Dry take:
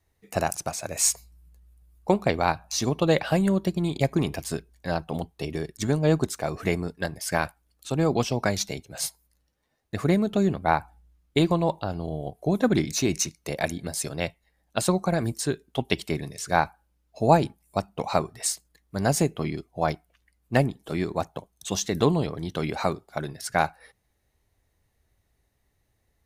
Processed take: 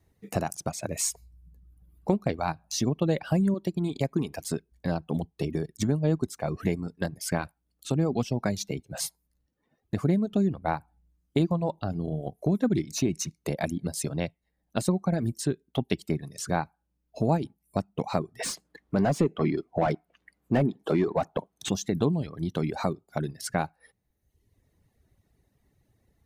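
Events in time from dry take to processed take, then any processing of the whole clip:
3.54–4.72 low shelf 180 Hz -8 dB
18.39–21.69 overdrive pedal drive 24 dB, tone 1200 Hz, clips at -7 dBFS
whole clip: reverb removal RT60 0.88 s; bell 190 Hz +11 dB 2.7 oct; compressor 2:1, threshold -30 dBFS

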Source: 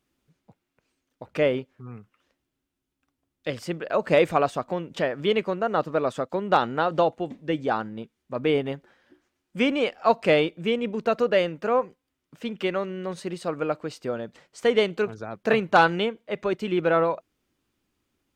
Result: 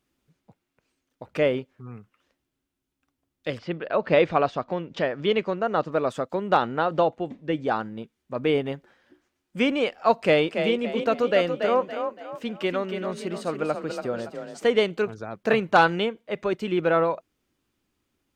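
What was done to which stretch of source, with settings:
3.57–5.9 LPF 4000 Hz -> 7500 Hz 24 dB/oct
6.54–7.66 high shelf 6900 Hz -11 dB
10.2–14.67 frequency-shifting echo 0.283 s, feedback 37%, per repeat +33 Hz, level -7 dB

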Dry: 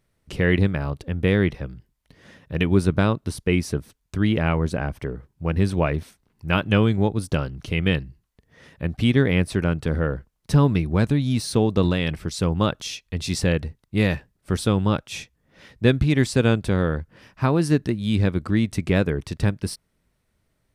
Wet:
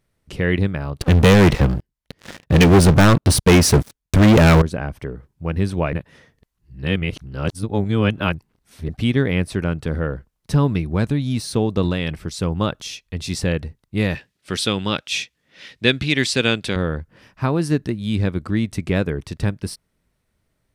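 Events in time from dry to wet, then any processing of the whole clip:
1.01–4.62 sample leveller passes 5
5.93–8.89 reverse
14.15–16.76 weighting filter D

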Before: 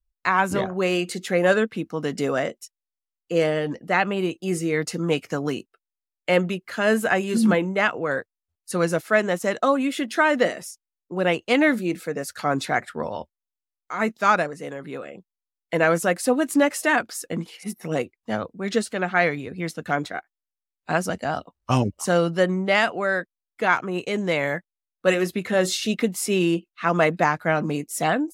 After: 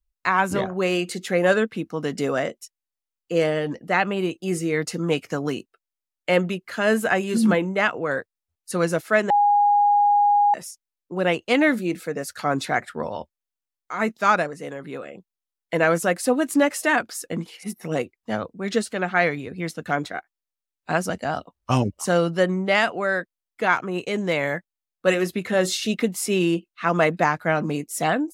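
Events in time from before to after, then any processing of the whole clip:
9.3–10.54 bleep 821 Hz -14 dBFS
23.72–24.42 de-esser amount 60%

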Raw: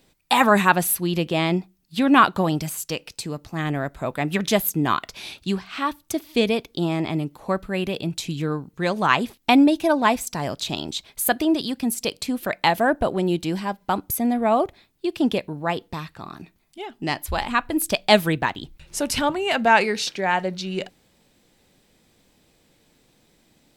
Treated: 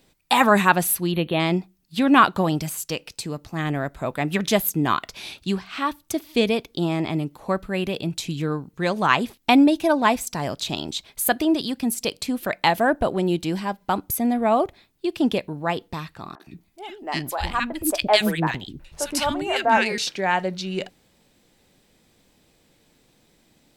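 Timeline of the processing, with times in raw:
1.12–1.4 spectral delete 4400–9700 Hz
16.35–19.98 three bands offset in time mids, highs, lows 50/120 ms, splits 400/1500 Hz

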